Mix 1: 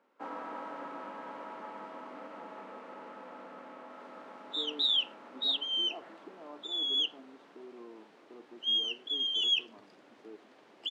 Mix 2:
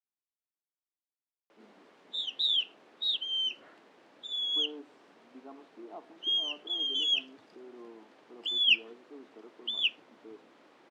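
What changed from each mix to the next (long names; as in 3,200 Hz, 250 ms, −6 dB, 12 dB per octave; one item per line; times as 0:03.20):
first sound: muted
second sound: entry −2.40 s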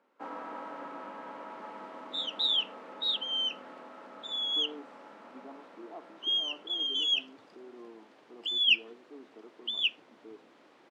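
first sound: unmuted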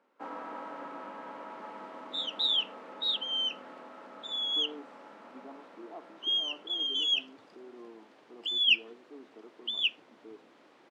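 nothing changed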